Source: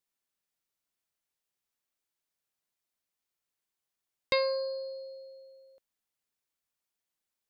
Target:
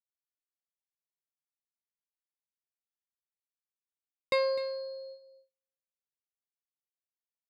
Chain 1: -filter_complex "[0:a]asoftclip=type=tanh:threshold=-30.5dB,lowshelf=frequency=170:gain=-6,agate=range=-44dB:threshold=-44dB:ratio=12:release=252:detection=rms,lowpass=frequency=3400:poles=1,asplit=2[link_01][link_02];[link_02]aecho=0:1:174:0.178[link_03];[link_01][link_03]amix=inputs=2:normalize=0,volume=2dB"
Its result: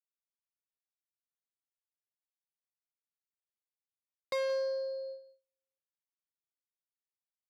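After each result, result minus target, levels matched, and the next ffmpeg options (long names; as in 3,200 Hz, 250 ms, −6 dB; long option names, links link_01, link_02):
soft clipping: distortion +11 dB; echo 80 ms early
-filter_complex "[0:a]asoftclip=type=tanh:threshold=-19dB,lowshelf=frequency=170:gain=-6,agate=range=-44dB:threshold=-44dB:ratio=12:release=252:detection=rms,lowpass=frequency=3400:poles=1,asplit=2[link_01][link_02];[link_02]aecho=0:1:174:0.178[link_03];[link_01][link_03]amix=inputs=2:normalize=0,volume=2dB"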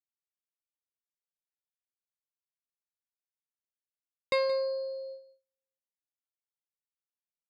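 echo 80 ms early
-filter_complex "[0:a]asoftclip=type=tanh:threshold=-19dB,lowshelf=frequency=170:gain=-6,agate=range=-44dB:threshold=-44dB:ratio=12:release=252:detection=rms,lowpass=frequency=3400:poles=1,asplit=2[link_01][link_02];[link_02]aecho=0:1:254:0.178[link_03];[link_01][link_03]amix=inputs=2:normalize=0,volume=2dB"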